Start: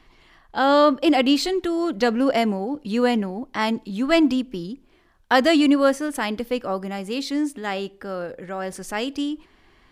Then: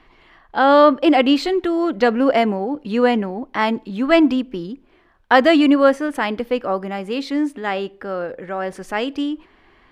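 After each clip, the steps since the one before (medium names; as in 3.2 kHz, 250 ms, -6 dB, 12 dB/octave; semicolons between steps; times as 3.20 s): tone controls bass -5 dB, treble -13 dB; trim +5 dB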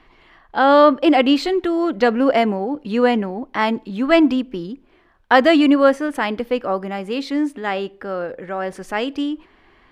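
no audible change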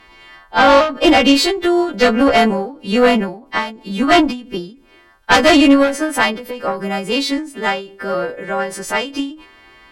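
partials quantised in pitch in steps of 2 st; Chebyshev shaper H 5 -7 dB, 6 -12 dB, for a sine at 1.5 dBFS; endings held to a fixed fall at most 120 dB/s; trim -4.5 dB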